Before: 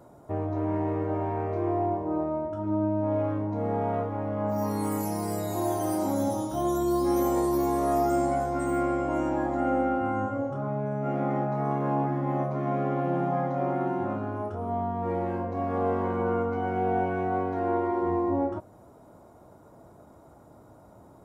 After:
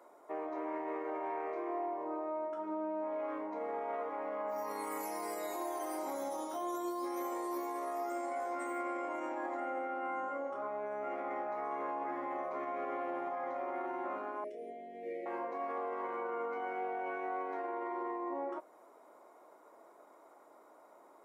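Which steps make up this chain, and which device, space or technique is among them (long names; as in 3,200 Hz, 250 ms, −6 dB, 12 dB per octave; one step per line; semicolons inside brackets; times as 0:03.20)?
laptop speaker (high-pass filter 350 Hz 24 dB per octave; parametric band 1,100 Hz +6 dB 0.42 octaves; parametric band 2,100 Hz +9.5 dB 0.53 octaves; brickwall limiter −24.5 dBFS, peak gain reduction 10 dB)
0:14.44–0:15.26: elliptic band-stop filter 620–2,000 Hz, stop band 40 dB
level −6 dB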